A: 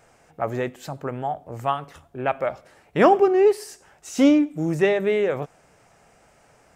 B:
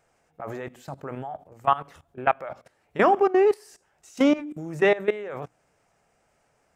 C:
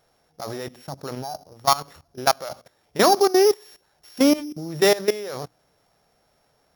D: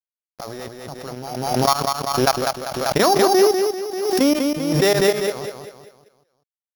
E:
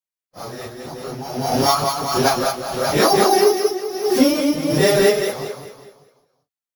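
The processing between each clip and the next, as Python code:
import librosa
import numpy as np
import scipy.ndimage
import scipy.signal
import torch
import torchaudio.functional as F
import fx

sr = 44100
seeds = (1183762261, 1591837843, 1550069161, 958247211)

y1 = fx.hum_notches(x, sr, base_hz=60, count=5)
y1 = fx.dynamic_eq(y1, sr, hz=1200.0, q=0.71, threshold_db=-34.0, ratio=4.0, max_db=7)
y1 = fx.level_steps(y1, sr, step_db=17)
y2 = np.r_[np.sort(y1[:len(y1) // 8 * 8].reshape(-1, 8), axis=1).ravel(), y1[len(y1) // 8 * 8:]]
y2 = F.gain(torch.from_numpy(y2), 2.5).numpy()
y3 = np.sign(y2) * np.maximum(np.abs(y2) - 10.0 ** (-44.0 / 20.0), 0.0)
y3 = fx.echo_feedback(y3, sr, ms=196, feedback_pct=41, wet_db=-5)
y3 = fx.pre_swell(y3, sr, db_per_s=41.0)
y4 = fx.phase_scramble(y3, sr, seeds[0], window_ms=100)
y4 = F.gain(torch.from_numpy(y4), 1.5).numpy()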